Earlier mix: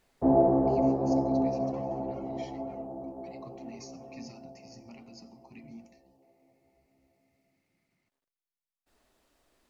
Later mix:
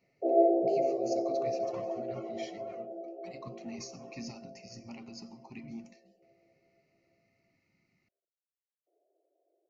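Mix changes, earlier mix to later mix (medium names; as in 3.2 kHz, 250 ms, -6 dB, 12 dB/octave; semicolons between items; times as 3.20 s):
speech +4.0 dB; background: add Chebyshev band-pass 330–710 Hz, order 4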